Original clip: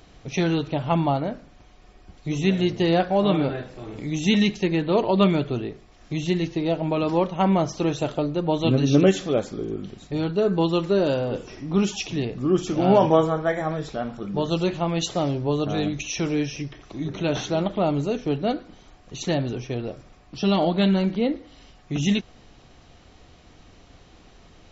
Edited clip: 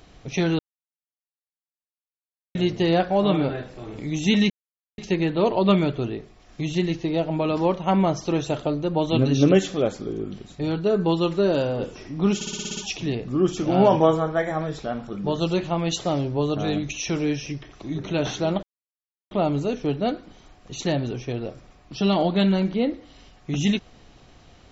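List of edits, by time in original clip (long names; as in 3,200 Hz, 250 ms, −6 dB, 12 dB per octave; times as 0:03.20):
0:00.59–0:02.55: silence
0:04.50: splice in silence 0.48 s
0:11.87: stutter 0.06 s, 8 plays
0:17.73: splice in silence 0.68 s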